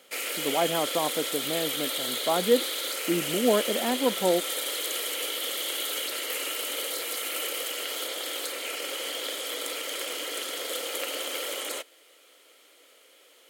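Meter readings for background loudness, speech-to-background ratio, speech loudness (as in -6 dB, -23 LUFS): -29.5 LUFS, 1.5 dB, -28.0 LUFS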